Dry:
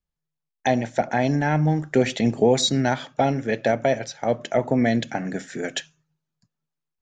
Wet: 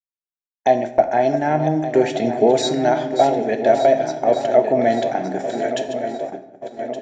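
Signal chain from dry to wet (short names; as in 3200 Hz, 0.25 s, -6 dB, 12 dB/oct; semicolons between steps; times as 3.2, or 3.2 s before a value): regenerating reverse delay 0.585 s, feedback 73%, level -10 dB; low shelf 170 Hz -7 dB; small resonant body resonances 370/630 Hz, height 15 dB, ringing for 20 ms; dynamic EQ 320 Hz, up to -5 dB, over -21 dBFS, Q 0.77; gate -23 dBFS, range -27 dB; on a send: reverb RT60 1.0 s, pre-delay 7 ms, DRR 9 dB; on the sum: gain -3.5 dB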